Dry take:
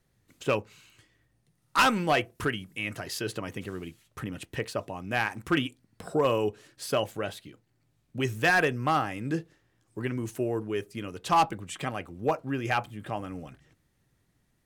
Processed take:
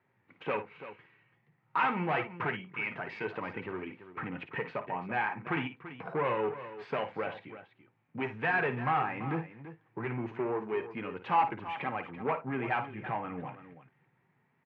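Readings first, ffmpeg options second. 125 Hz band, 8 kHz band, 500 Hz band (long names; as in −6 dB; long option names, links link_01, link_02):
−5.5 dB, below −35 dB, −5.0 dB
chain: -filter_complex "[0:a]asplit=2[link_01][link_02];[link_02]alimiter=level_in=2.5dB:limit=-24dB:level=0:latency=1:release=177,volume=-2.5dB,volume=2dB[link_03];[link_01][link_03]amix=inputs=2:normalize=0,volume=22dB,asoftclip=hard,volume=-22dB,flanger=delay=3:depth=3.7:regen=-58:speed=0.26:shape=triangular,highpass=frequency=130:width=0.5412,highpass=frequency=130:width=1.3066,equalizer=frequency=200:width_type=q:width=4:gain=-6,equalizer=frequency=300:width_type=q:width=4:gain=-7,equalizer=frequency=600:width_type=q:width=4:gain=-5,equalizer=frequency=900:width_type=q:width=4:gain=7,equalizer=frequency=2300:width_type=q:width=4:gain=5,lowpass=frequency=2300:width=0.5412,lowpass=frequency=2300:width=1.3066,aecho=1:1:55|336:0.282|0.224"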